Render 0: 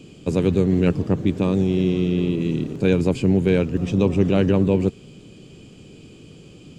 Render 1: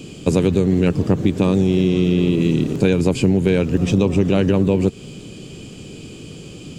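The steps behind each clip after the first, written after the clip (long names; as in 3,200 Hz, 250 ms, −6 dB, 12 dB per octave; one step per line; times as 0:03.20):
high-shelf EQ 5,000 Hz +6.5 dB
downward compressor, threshold −20 dBFS, peak gain reduction 8.5 dB
level +8 dB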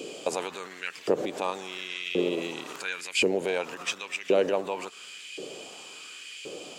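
brickwall limiter −12.5 dBFS, peak gain reduction 9.5 dB
auto-filter high-pass saw up 0.93 Hz 440–2,400 Hz
level −1 dB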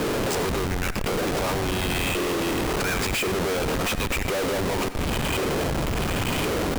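comparator with hysteresis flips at −38.5 dBFS
convolution reverb RT60 0.35 s, pre-delay 84 ms, DRR 12.5 dB
level +6.5 dB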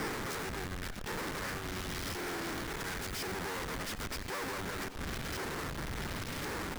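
phase distortion by the signal itself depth 0.76 ms
brickwall limiter −26 dBFS, peak gain reduction 9 dB
level −8.5 dB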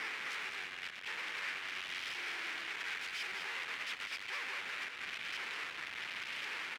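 resonant band-pass 2,500 Hz, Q 2.3
single-tap delay 204 ms −6.5 dB
level +5.5 dB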